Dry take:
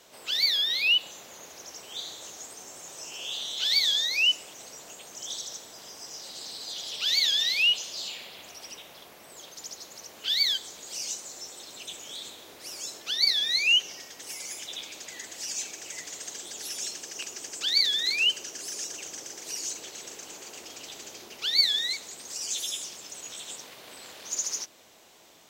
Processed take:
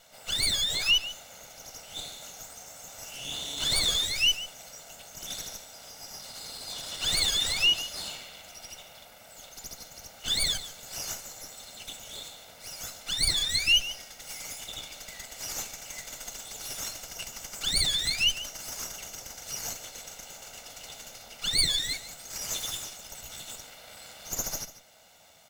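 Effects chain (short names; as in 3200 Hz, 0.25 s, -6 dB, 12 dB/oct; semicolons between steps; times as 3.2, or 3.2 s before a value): minimum comb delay 1.4 ms; echo 0.143 s -15 dB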